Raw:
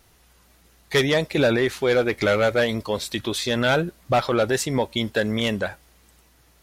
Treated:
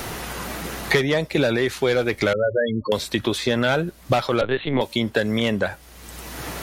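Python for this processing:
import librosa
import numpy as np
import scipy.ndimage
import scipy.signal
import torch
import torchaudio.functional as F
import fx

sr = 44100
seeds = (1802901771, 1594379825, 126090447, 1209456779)

y = fx.spec_topn(x, sr, count=8, at=(2.33, 2.92))
y = fx.lpc_vocoder(y, sr, seeds[0], excitation='pitch_kept', order=10, at=(4.41, 4.81))
y = fx.band_squash(y, sr, depth_pct=100)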